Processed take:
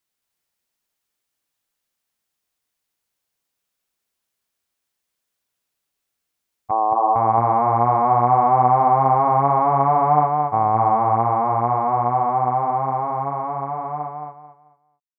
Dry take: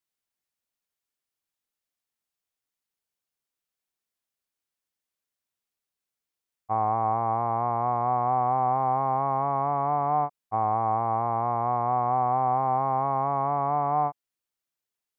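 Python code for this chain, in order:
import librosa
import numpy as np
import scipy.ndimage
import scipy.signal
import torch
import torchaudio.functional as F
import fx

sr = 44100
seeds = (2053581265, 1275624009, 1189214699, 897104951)

y = fx.fade_out_tail(x, sr, length_s=4.71)
y = fx.ellip_bandpass(y, sr, low_hz=280.0, high_hz=1100.0, order=3, stop_db=40, at=(6.71, 7.16))
y = fx.echo_feedback(y, sr, ms=220, feedback_pct=28, wet_db=-3.0)
y = F.gain(torch.from_numpy(y), 7.0).numpy()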